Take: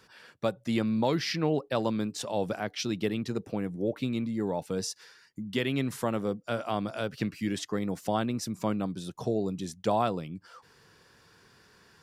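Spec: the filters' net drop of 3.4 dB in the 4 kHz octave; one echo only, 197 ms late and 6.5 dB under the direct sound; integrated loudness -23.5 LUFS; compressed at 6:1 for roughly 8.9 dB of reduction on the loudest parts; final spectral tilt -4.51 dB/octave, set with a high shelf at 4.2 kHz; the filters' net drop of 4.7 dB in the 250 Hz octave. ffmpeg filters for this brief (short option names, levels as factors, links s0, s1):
-af "equalizer=f=250:t=o:g=-6,equalizer=f=4000:t=o:g=-9,highshelf=f=4200:g=7,acompressor=threshold=0.0224:ratio=6,aecho=1:1:197:0.473,volume=5.31"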